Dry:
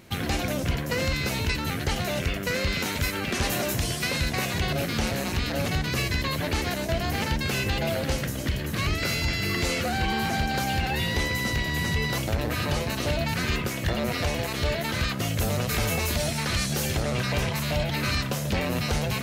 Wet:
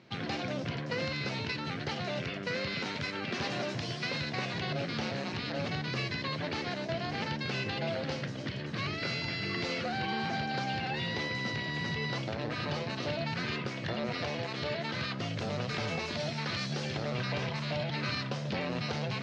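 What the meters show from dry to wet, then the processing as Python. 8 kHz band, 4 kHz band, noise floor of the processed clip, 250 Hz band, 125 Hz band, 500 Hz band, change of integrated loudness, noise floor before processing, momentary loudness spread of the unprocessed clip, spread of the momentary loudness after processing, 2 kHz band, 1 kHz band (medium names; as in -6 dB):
-17.5 dB, -6.5 dB, -38 dBFS, -7.0 dB, -8.5 dB, -6.0 dB, -7.5 dB, -31 dBFS, 2 LU, 2 LU, -6.5 dB, -6.0 dB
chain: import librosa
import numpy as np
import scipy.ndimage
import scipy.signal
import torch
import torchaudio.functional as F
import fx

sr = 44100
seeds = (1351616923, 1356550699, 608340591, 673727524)

y = scipy.signal.sosfilt(scipy.signal.ellip(3, 1.0, 50, [120.0, 4900.0], 'bandpass', fs=sr, output='sos'), x)
y = F.gain(torch.from_numpy(y), -6.0).numpy()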